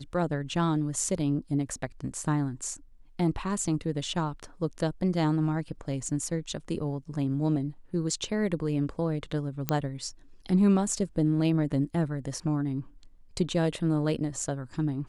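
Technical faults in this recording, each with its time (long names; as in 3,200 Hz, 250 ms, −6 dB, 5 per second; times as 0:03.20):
0:09.69: click −11 dBFS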